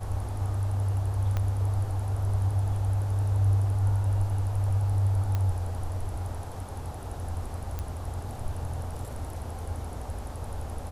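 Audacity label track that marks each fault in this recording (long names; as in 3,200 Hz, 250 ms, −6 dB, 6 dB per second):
1.370000	1.370000	click −17 dBFS
5.350000	5.350000	click −17 dBFS
7.790000	7.790000	click −20 dBFS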